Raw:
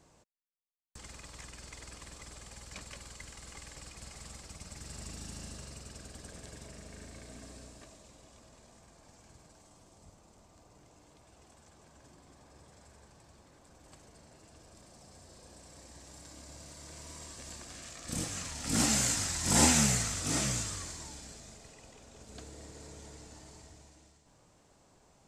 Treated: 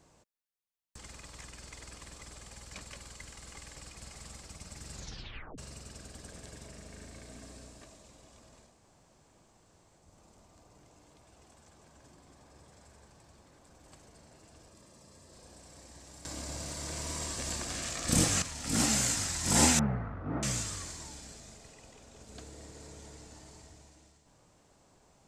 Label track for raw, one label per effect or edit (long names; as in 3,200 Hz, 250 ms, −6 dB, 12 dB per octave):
4.930000	4.930000	tape stop 0.65 s
8.720000	10.070000	fill with room tone, crossfade 0.24 s
14.680000	15.330000	notch comb filter 750 Hz
16.250000	18.420000	clip gain +10 dB
19.790000	20.430000	low-pass filter 1,400 Hz 24 dB per octave